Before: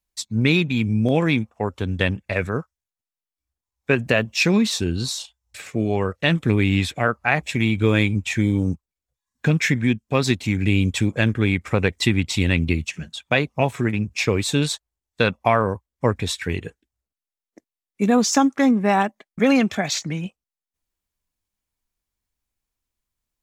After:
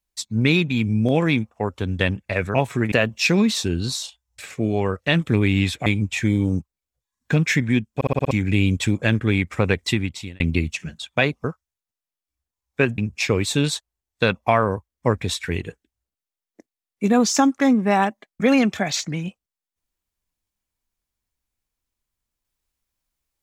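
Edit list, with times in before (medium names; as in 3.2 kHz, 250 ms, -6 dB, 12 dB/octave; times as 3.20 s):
2.54–4.08 s: swap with 13.58–13.96 s
7.02–8.00 s: delete
10.09 s: stutter in place 0.06 s, 6 plays
11.93–12.54 s: fade out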